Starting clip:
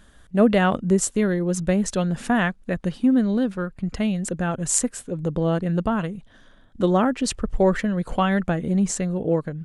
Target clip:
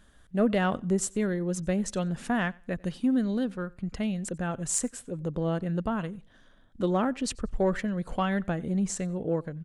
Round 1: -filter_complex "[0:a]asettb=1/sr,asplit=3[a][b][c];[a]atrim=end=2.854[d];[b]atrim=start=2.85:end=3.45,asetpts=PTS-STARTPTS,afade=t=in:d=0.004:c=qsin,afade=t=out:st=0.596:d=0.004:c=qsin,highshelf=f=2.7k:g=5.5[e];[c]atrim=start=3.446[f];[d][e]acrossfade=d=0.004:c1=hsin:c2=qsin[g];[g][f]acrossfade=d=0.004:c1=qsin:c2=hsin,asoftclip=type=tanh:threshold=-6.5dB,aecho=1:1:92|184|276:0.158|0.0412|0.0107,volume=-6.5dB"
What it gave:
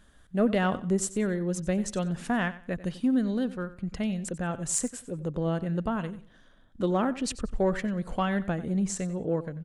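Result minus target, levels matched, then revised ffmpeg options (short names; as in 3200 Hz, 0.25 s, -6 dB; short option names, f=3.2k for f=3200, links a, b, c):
echo-to-direct +9.5 dB
-filter_complex "[0:a]asettb=1/sr,asplit=3[a][b][c];[a]atrim=end=2.854[d];[b]atrim=start=2.85:end=3.45,asetpts=PTS-STARTPTS,afade=t=in:d=0.004:c=qsin,afade=t=out:st=0.596:d=0.004:c=qsin,highshelf=f=2.7k:g=5.5[e];[c]atrim=start=3.446[f];[d][e]acrossfade=d=0.004:c1=hsin:c2=qsin[g];[g][f]acrossfade=d=0.004:c1=qsin:c2=hsin,asoftclip=type=tanh:threshold=-6.5dB,aecho=1:1:92|184:0.0531|0.0138,volume=-6.5dB"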